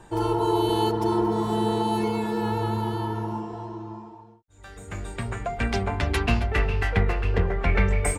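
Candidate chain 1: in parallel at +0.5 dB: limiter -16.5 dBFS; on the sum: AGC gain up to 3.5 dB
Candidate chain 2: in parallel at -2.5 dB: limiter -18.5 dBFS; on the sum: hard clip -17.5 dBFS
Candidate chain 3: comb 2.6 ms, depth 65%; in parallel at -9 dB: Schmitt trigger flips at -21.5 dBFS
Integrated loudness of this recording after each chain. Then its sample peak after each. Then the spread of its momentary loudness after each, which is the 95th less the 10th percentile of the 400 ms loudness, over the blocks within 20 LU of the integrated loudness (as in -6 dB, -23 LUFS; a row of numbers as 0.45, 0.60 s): -17.5, -23.5, -22.0 LUFS; -3.5, -17.5, -6.5 dBFS; 12, 11, 14 LU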